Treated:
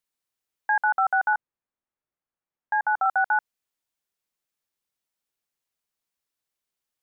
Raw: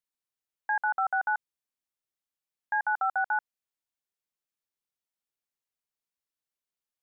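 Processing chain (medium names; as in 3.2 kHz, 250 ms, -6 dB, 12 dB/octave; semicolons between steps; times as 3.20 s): 1.33–3.06 s: low-pass 1.6 kHz 12 dB/octave; trim +5.5 dB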